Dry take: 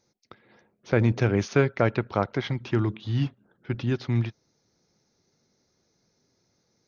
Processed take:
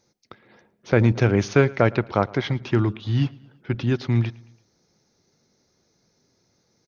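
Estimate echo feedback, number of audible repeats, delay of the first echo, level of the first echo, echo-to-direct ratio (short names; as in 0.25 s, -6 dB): 51%, 2, 0.112 s, -23.5 dB, -22.5 dB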